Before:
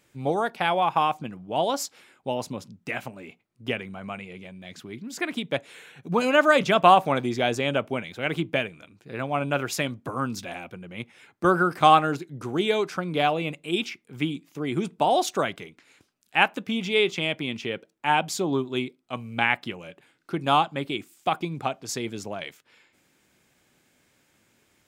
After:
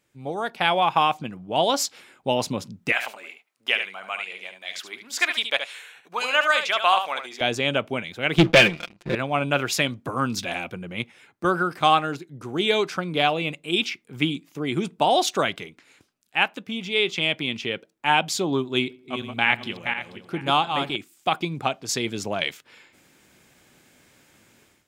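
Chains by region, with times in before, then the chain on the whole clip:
2.92–7.41 HPF 840 Hz + echo 73 ms -8 dB
8.38–9.15 air absorption 87 m + comb 5.7 ms, depth 77% + sample leveller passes 3
18.74–20.96 regenerating reverse delay 0.24 s, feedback 48%, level -6 dB + darkening echo 82 ms, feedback 49%, low-pass 2300 Hz, level -22 dB
whole clip: AGC gain up to 15 dB; dynamic EQ 3500 Hz, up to +6 dB, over -33 dBFS, Q 0.76; gain -7 dB

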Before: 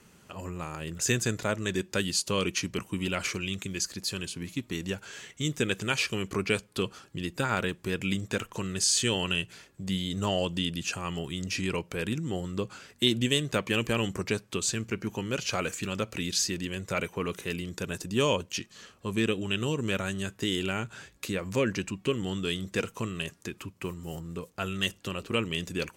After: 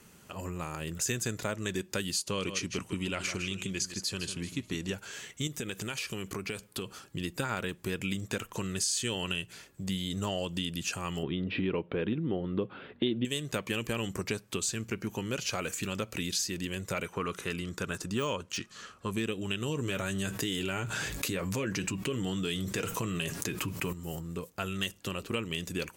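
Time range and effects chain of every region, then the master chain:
2.24–4.94 LPF 9300 Hz + echo 0.156 s -11 dB
5.47–7.04 high shelf 11000 Hz +4.5 dB + compressor 4:1, threshold -33 dBFS
11.23–13.25 elliptic low-pass 3600 Hz, stop band 50 dB + bell 340 Hz +10.5 dB 2.7 oct
17.05–19.11 LPF 9800 Hz + bell 1300 Hz +8.5 dB 0.59 oct + de-esser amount 70%
19.68–23.93 flange 1.5 Hz, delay 6.2 ms, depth 1.2 ms, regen -50% + fast leveller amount 70%
whole clip: high shelf 11000 Hz +9.5 dB; compressor 3:1, threshold -30 dBFS

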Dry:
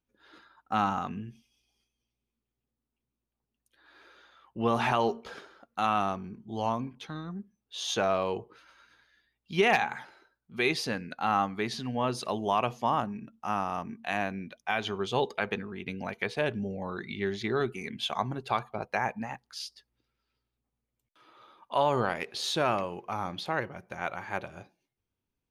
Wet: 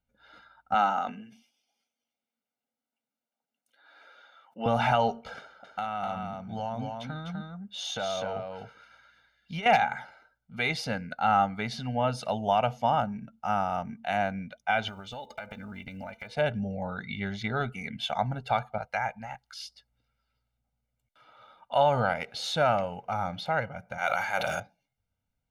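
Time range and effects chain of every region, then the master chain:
0.74–4.66 HPF 250 Hz 24 dB/oct + sustainer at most 100 dB/s
5.39–9.66 low shelf 67 Hz -8.5 dB + compressor 12:1, threshold -30 dBFS + echo 0.251 s -4 dB
14.88–16.35 block floating point 7-bit + comb 3.4 ms, depth 47% + compressor 10:1, threshold -37 dBFS
18.78–19.61 bell 280 Hz -10.5 dB 2.6 oct + mismatched tape noise reduction encoder only
23.98–24.6 RIAA curve recording + sustainer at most 21 dB/s
whole clip: high shelf 4600 Hz -8 dB; comb 1.4 ms, depth 91%

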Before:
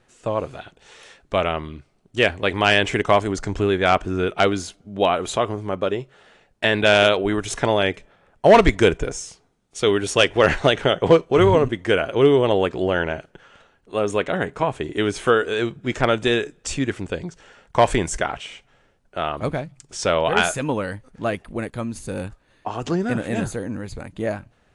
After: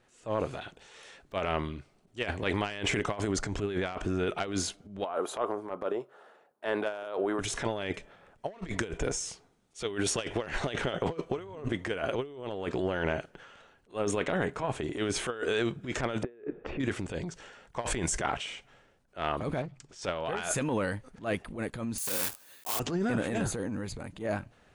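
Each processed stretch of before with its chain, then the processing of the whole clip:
5.04–7.39 HPF 390 Hz + band shelf 4000 Hz -13.5 dB 2.5 oct
16.23–16.8 LPF 2200 Hz 24 dB/oct + bell 410 Hz +12 dB 1.7 oct
19.62–20.02 air absorption 73 m + core saturation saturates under 580 Hz
21.98–22.8 block floating point 3-bit + RIAA curve recording
whole clip: low shelf 110 Hz -4.5 dB; transient shaper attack -11 dB, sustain +5 dB; negative-ratio compressor -23 dBFS, ratio -0.5; gain -7.5 dB

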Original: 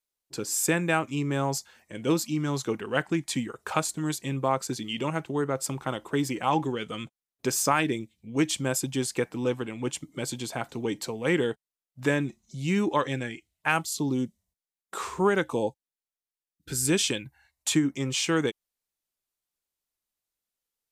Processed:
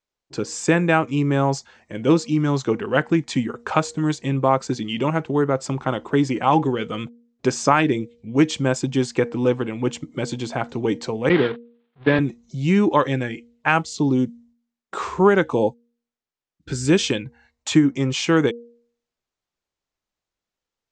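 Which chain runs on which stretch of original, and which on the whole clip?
11.29–12.19 delta modulation 32 kbps, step -23.5 dBFS + Chebyshev band-pass 110–3700 Hz, order 4 + gate -28 dBFS, range -57 dB
whole clip: steep low-pass 7300 Hz 36 dB/oct; high shelf 2500 Hz -8.5 dB; de-hum 236.3 Hz, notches 2; gain +8.5 dB

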